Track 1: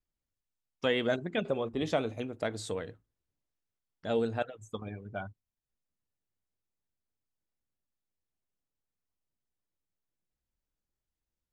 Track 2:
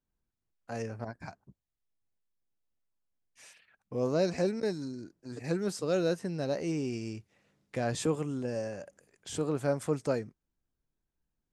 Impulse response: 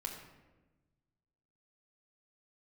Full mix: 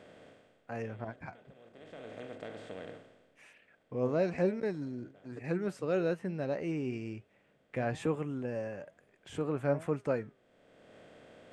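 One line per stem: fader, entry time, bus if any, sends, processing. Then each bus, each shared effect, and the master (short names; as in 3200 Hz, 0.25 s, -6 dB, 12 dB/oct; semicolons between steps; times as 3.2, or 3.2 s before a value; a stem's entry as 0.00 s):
-15.5 dB, 0.00 s, no send, per-bin compression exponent 0.2; high shelf 3500 Hz -7.5 dB; auto duck -16 dB, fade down 0.40 s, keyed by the second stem
+2.5 dB, 0.00 s, no send, resonant high shelf 3400 Hz -10.5 dB, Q 1.5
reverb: off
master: flange 1.1 Hz, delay 4.7 ms, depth 3.7 ms, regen +89%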